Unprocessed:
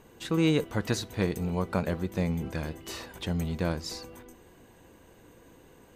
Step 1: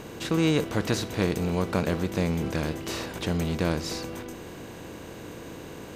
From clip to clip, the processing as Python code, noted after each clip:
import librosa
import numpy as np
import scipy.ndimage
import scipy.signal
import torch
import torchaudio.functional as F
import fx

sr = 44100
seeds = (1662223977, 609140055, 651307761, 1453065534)

y = fx.bin_compress(x, sr, power=0.6)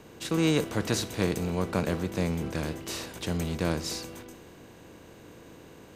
y = fx.dynamic_eq(x, sr, hz=9700.0, q=0.79, threshold_db=-50.0, ratio=4.0, max_db=5)
y = fx.band_widen(y, sr, depth_pct=40)
y = y * 10.0 ** (-2.5 / 20.0)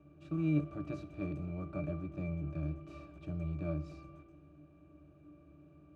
y = fx.octave_resonator(x, sr, note='D', decay_s=0.14)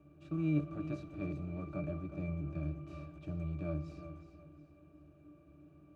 y = fx.echo_feedback(x, sr, ms=364, feedback_pct=32, wet_db=-11.5)
y = y * 10.0 ** (-1.0 / 20.0)